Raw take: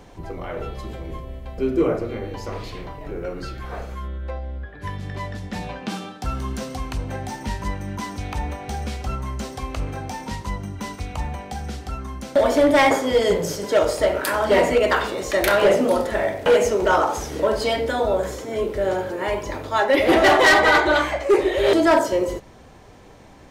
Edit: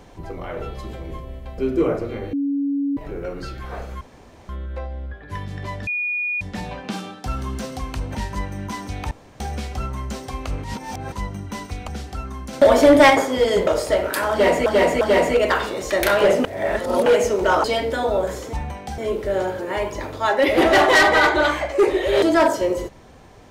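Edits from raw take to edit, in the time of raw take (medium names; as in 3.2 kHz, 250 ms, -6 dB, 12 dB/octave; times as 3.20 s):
2.33–2.97 s: bleep 281 Hz -19 dBFS
4.01 s: insert room tone 0.48 s
5.39 s: add tone 2.45 kHz -21 dBFS 0.54 s
7.13–7.44 s: delete
8.40–8.69 s: room tone
9.93–10.41 s: reverse
11.17–11.62 s: move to 18.49 s
12.27–12.84 s: gain +4.5 dB
13.41–13.78 s: delete
14.42–14.77 s: loop, 3 plays
15.85–16.47 s: reverse
17.05–17.60 s: delete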